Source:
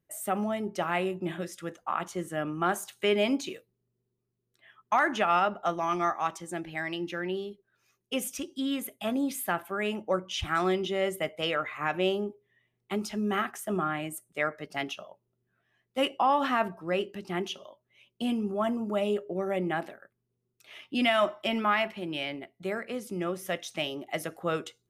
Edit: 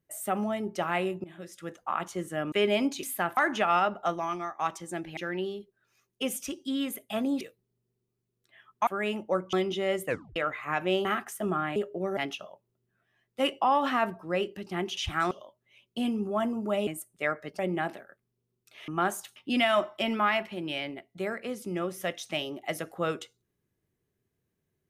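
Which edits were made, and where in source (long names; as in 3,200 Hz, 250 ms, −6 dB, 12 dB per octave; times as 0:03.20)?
0:01.24–0:01.79: fade in, from −19.5 dB
0:02.52–0:03.00: move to 0:20.81
0:03.51–0:04.97: swap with 0:09.32–0:09.66
0:05.71–0:06.19: fade out, to −15.5 dB
0:06.77–0:07.08: remove
0:10.32–0:10.66: move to 0:17.55
0:11.19: tape stop 0.30 s
0:12.18–0:13.32: remove
0:14.03–0:14.75: swap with 0:19.11–0:19.52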